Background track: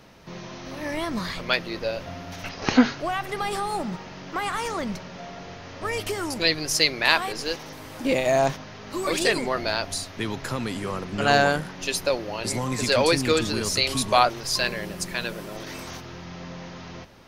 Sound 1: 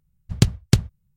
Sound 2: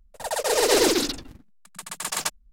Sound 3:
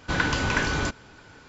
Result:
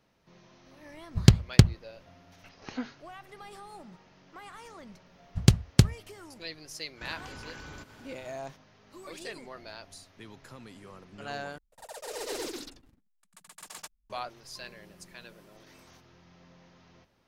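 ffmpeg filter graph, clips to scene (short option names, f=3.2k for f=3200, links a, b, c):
-filter_complex "[1:a]asplit=2[a][b];[0:a]volume=-19dB[c];[a]adynamicsmooth=sensitivity=3.5:basefreq=2.4k[d];[3:a]acompressor=threshold=-38dB:ratio=6:attack=3.2:release=140:knee=1:detection=peak[e];[c]asplit=2[f][g];[f]atrim=end=11.584[h];[2:a]atrim=end=2.52,asetpts=PTS-STARTPTS,volume=-17dB[i];[g]atrim=start=14.096[j];[d]atrim=end=1.16,asetpts=PTS-STARTPTS,afade=t=in:d=0.004:c=hsin,afade=t=out:st=1.156:d=0.004:c=hsin,adelay=860[k];[b]atrim=end=1.16,asetpts=PTS-STARTPTS,volume=-2.5dB,afade=t=in:d=0.004:c=hsin,afade=t=out:st=1.156:d=0.004:c=hsin,adelay=5060[l];[e]atrim=end=1.48,asetpts=PTS-STARTPTS,volume=-4.5dB,afade=t=in:d=0.1,afade=t=out:st=1.38:d=0.1,adelay=6930[m];[h][i]acrossfade=d=0.004:c1=hsin:c2=hsin[n];[n][j]acrossfade=d=0.004:c1=hsin:c2=hsin[o];[o][k][l][m]amix=inputs=4:normalize=0"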